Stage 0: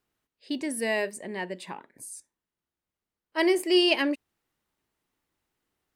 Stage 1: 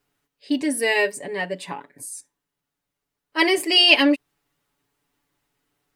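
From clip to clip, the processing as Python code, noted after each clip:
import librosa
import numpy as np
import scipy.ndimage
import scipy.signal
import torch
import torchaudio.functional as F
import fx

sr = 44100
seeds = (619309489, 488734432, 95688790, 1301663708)

y = fx.dynamic_eq(x, sr, hz=2900.0, q=0.92, threshold_db=-37.0, ratio=4.0, max_db=5)
y = y + 0.94 * np.pad(y, (int(7.0 * sr / 1000.0), 0))[:len(y)]
y = y * 10.0 ** (4.0 / 20.0)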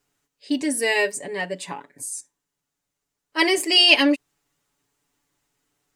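y = fx.peak_eq(x, sr, hz=7000.0, db=8.0, octaves=0.81)
y = y * 10.0 ** (-1.0 / 20.0)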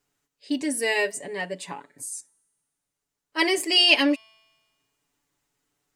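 y = fx.comb_fb(x, sr, f0_hz=220.0, decay_s=1.5, harmonics='all', damping=0.0, mix_pct=30)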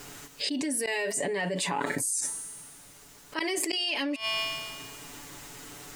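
y = fx.gate_flip(x, sr, shuts_db=-16.0, range_db=-26)
y = fx.env_flatten(y, sr, amount_pct=100)
y = y * 10.0 ** (-8.0 / 20.0)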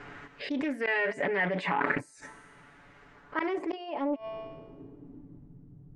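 y = fx.filter_sweep_lowpass(x, sr, from_hz=1800.0, to_hz=160.0, start_s=3.06, end_s=5.74, q=1.8)
y = fx.doppler_dist(y, sr, depth_ms=0.37)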